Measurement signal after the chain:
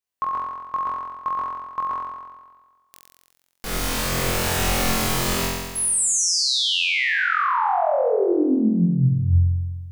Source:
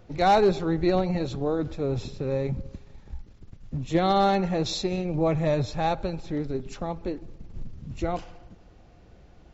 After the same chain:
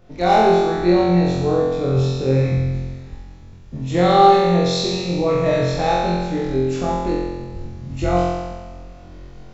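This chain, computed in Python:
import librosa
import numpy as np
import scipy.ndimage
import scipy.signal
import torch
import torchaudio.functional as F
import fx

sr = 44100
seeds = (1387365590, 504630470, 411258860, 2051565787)

p1 = fx.rider(x, sr, range_db=3, speed_s=2.0)
p2 = p1 + fx.room_flutter(p1, sr, wall_m=3.9, rt60_s=1.4, dry=0)
y = F.gain(torch.from_numpy(p2), 1.5).numpy()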